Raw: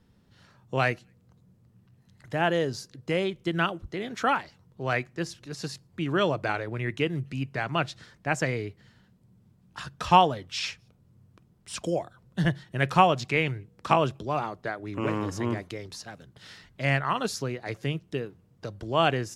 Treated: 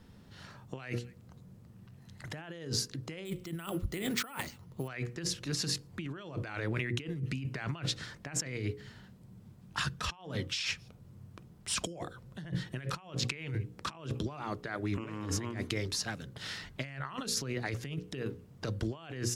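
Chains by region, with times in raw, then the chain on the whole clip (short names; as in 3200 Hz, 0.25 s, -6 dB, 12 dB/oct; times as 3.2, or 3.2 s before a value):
3.25–4.88 notch 1600 Hz, Q 9.9 + careless resampling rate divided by 4×, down none, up hold
whole clip: notches 60/120/180/240/300/360/420/480/540 Hz; negative-ratio compressor -37 dBFS, ratio -1; dynamic EQ 660 Hz, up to -7 dB, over -49 dBFS, Q 1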